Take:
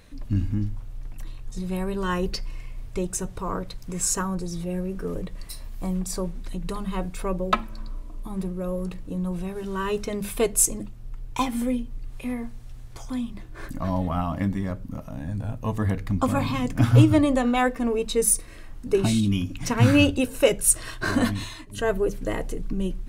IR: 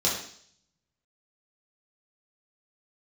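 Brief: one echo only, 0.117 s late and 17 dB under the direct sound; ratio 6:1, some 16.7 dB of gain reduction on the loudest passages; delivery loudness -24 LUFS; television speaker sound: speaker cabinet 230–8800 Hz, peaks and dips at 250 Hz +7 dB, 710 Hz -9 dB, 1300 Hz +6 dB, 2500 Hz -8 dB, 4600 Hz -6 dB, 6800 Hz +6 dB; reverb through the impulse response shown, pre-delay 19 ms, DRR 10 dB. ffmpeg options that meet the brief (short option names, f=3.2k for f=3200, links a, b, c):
-filter_complex "[0:a]acompressor=threshold=-29dB:ratio=6,aecho=1:1:117:0.141,asplit=2[a][b];[1:a]atrim=start_sample=2205,adelay=19[c];[b][c]afir=irnorm=-1:irlink=0,volume=-21dB[d];[a][d]amix=inputs=2:normalize=0,highpass=f=230:w=0.5412,highpass=f=230:w=1.3066,equalizer=f=250:t=q:w=4:g=7,equalizer=f=710:t=q:w=4:g=-9,equalizer=f=1.3k:t=q:w=4:g=6,equalizer=f=2.5k:t=q:w=4:g=-8,equalizer=f=4.6k:t=q:w=4:g=-6,equalizer=f=6.8k:t=q:w=4:g=6,lowpass=f=8.8k:w=0.5412,lowpass=f=8.8k:w=1.3066,volume=10.5dB"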